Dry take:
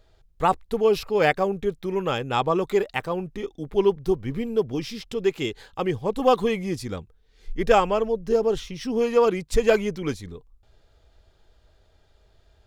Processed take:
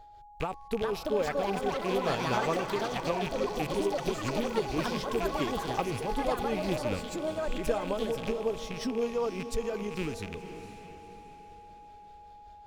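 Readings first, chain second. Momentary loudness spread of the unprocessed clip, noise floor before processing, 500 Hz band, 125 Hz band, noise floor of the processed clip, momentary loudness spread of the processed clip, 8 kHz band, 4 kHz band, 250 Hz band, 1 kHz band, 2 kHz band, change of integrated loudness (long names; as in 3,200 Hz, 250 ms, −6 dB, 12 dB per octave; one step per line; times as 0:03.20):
11 LU, −61 dBFS, −8.5 dB, −5.0 dB, −51 dBFS, 20 LU, −1.5 dB, −4.0 dB, −5.5 dB, −6.5 dB, −6.0 dB, −7.5 dB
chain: loose part that buzzes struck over −37 dBFS, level −22 dBFS
dynamic equaliser 2,300 Hz, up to −5 dB, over −38 dBFS, Q 0.75
downward compressor 5 to 1, threshold −26 dBFS, peak gain reduction 12.5 dB
amplitude tremolo 5.2 Hz, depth 55%
steady tone 830 Hz −50 dBFS
on a send: feedback delay with all-pass diffusion 505 ms, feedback 45%, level −10.5 dB
on the sum: delay with pitch and tempo change per echo 517 ms, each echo +5 semitones, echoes 3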